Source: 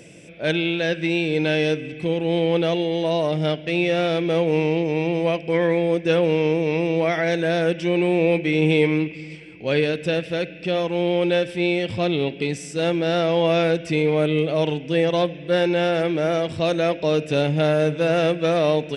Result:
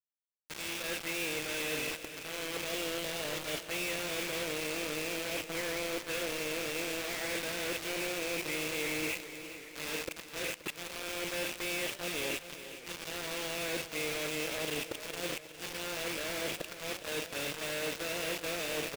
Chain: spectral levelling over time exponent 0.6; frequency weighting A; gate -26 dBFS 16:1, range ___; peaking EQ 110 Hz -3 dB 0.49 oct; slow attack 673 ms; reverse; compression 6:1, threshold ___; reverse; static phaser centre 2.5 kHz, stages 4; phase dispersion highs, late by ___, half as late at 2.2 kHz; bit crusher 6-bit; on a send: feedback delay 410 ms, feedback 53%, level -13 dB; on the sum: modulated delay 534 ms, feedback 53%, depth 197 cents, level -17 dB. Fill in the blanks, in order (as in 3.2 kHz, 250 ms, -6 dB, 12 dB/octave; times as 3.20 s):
-15 dB, -33 dBFS, 58 ms